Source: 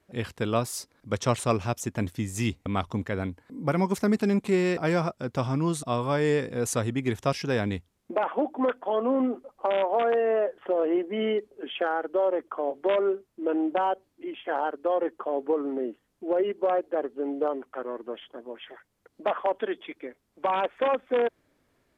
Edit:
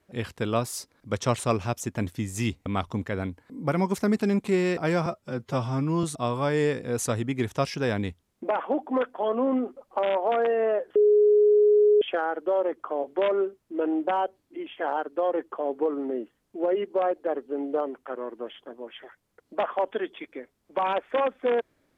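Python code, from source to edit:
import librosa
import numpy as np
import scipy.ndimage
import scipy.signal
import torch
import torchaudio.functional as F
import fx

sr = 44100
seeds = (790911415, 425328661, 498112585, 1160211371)

y = fx.edit(x, sr, fx.stretch_span(start_s=5.06, length_s=0.65, factor=1.5),
    fx.bleep(start_s=10.63, length_s=1.06, hz=418.0, db=-15.0), tone=tone)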